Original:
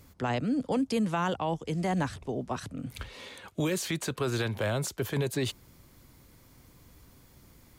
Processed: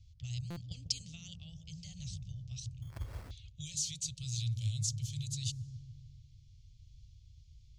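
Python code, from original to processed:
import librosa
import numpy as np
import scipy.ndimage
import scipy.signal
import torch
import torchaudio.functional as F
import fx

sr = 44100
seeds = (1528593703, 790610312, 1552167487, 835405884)

y = scipy.signal.sosfilt(scipy.signal.cheby2(4, 40, [210.0, 1700.0], 'bandstop', fs=sr, output='sos'), x)
y = fx.env_lowpass(y, sr, base_hz=2200.0, full_db=-36.0)
y = fx.transient(y, sr, attack_db=9, sustain_db=5, at=(0.69, 1.17), fade=0.02)
y = fx.dynamic_eq(y, sr, hz=2500.0, q=0.79, threshold_db=-56.0, ratio=4.0, max_db=-5)
y = fx.lowpass_res(y, sr, hz=6400.0, q=2.7)
y = fx.low_shelf(y, sr, hz=450.0, db=4.0)
y = fx.echo_wet_lowpass(y, sr, ms=146, feedback_pct=62, hz=540.0, wet_db=-4.0)
y = fx.sample_hold(y, sr, seeds[0], rate_hz=3300.0, jitter_pct=0, at=(2.82, 3.31))
y = fx.buffer_glitch(y, sr, at_s=(0.5,), block=256, repeats=10)
y = y * librosa.db_to_amplitude(-3.0)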